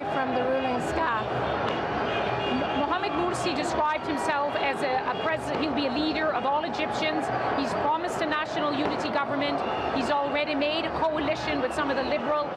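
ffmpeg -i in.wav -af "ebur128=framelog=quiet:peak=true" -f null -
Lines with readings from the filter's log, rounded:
Integrated loudness:
  I:         -26.7 LUFS
  Threshold: -36.7 LUFS
Loudness range:
  LRA:         0.4 LU
  Threshold: -46.7 LUFS
  LRA low:   -26.9 LUFS
  LRA high:  -26.5 LUFS
True peak:
  Peak:      -12.6 dBFS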